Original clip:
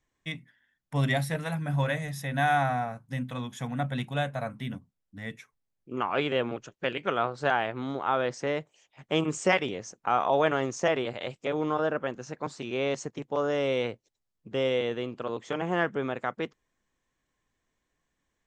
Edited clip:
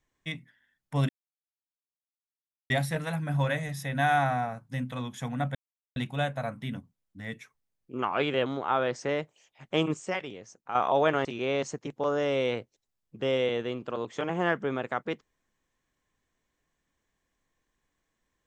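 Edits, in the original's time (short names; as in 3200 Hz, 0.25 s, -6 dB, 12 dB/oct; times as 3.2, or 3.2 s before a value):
1.09 insert silence 1.61 s
3.94 insert silence 0.41 s
6.44–7.84 cut
9.32–10.13 gain -8.5 dB
10.63–12.57 cut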